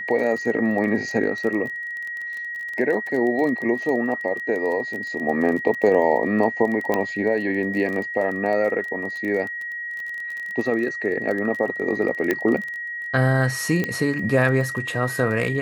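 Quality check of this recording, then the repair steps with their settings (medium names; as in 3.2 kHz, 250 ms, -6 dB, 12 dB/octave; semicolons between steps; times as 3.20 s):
crackle 22 per s -28 dBFS
whine 1.9 kHz -28 dBFS
6.94 s: pop -9 dBFS
12.31 s: pop -8 dBFS
13.84 s: pop -11 dBFS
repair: de-click; band-stop 1.9 kHz, Q 30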